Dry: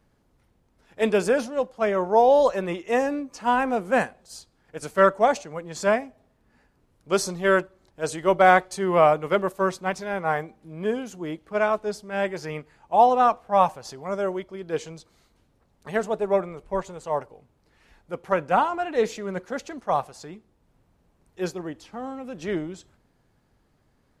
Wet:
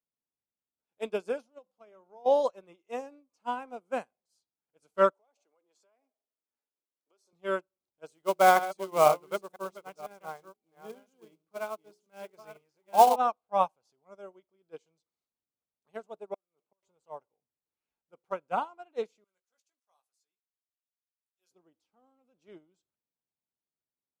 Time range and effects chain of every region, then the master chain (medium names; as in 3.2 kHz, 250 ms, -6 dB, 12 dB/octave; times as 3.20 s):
1.58–2.26 s: compression 4:1, threshold -26 dBFS + hum notches 50/100/150/200 Hz
5.13–7.33 s: high-pass 290 Hz 24 dB/octave + compression 12:1, threshold -34 dBFS
8.06–13.16 s: chunks repeated in reverse 501 ms, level -6 dB + hum notches 60/120/180/240/300/360/420 Hz + short-mantissa float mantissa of 2-bit
16.34–16.83 s: high-pass 180 Hz + compression 3:1, threshold -30 dBFS + inverted gate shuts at -27 dBFS, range -24 dB
19.24–21.51 s: differentiator + doubling 16 ms -7 dB
whole clip: high-pass 260 Hz 6 dB/octave; peaking EQ 1.8 kHz -13.5 dB 0.24 oct; upward expansion 2.5:1, over -35 dBFS